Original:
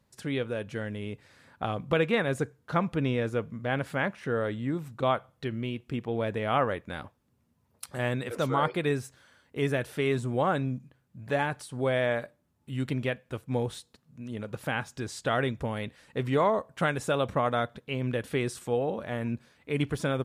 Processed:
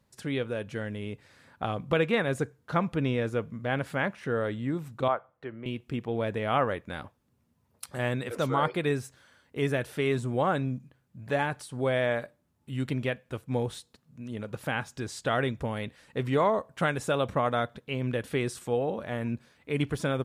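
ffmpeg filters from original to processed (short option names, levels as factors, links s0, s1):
-filter_complex "[0:a]asettb=1/sr,asplit=3[s0][s1][s2];[s0]atrim=end=5.084[s3];[s1]atrim=start=5.08:end=5.66,asetpts=PTS-STARTPTS,afade=t=in:d=0.004:c=qsin,afade=t=out:st=0.576:d=0.004:c=qsin,acrossover=split=370 2000:gain=0.251 1 0.1[s4][s5][s6];[s4][s5][s6]amix=inputs=3:normalize=0[s7];[s2]atrim=start=5.656[s8];[s3][s7]acrossfade=d=0.004:c1=hsin:c2=qsin[s9];[s9][s8]acrossfade=d=0.004:c1=qsin:c2=hsin"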